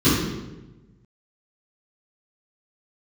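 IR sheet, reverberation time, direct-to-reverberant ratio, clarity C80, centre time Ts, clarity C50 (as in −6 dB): 1.1 s, −16.0 dB, 3.0 dB, 77 ms, 0.0 dB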